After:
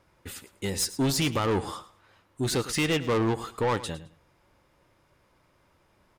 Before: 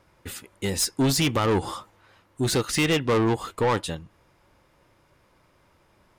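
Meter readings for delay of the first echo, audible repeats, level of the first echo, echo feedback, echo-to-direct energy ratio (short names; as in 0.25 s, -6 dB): 0.107 s, 2, -16.0 dB, 21%, -16.0 dB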